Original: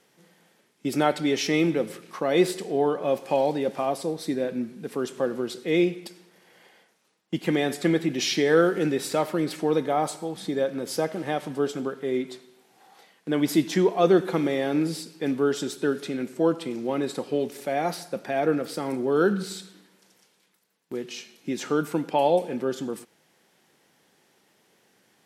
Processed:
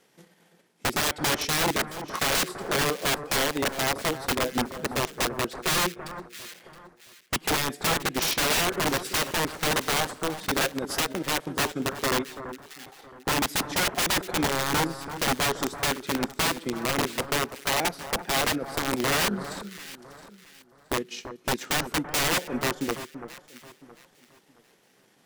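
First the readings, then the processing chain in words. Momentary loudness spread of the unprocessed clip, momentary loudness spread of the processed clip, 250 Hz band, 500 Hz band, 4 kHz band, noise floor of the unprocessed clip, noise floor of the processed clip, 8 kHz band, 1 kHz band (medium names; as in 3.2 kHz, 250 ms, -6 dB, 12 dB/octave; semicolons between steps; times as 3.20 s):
11 LU, 13 LU, -6.0 dB, -7.0 dB, +8.0 dB, -65 dBFS, -62 dBFS, +9.5 dB, +2.0 dB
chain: transient shaper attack +9 dB, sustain -9 dB; integer overflow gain 19 dB; echo whose repeats swap between lows and highs 335 ms, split 1.6 kHz, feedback 54%, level -10.5 dB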